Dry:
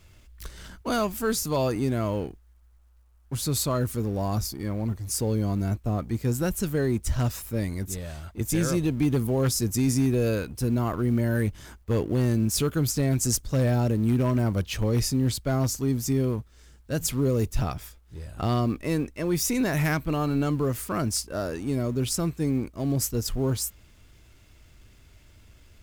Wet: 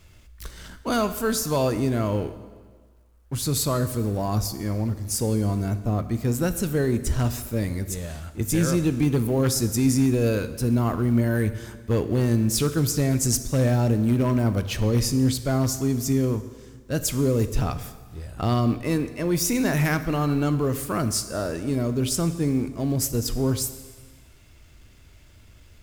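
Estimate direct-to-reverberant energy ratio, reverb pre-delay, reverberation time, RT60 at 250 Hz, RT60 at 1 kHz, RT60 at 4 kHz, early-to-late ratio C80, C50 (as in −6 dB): 10.5 dB, 6 ms, 1.5 s, 1.5 s, 1.5 s, 1.4 s, 13.5 dB, 12.5 dB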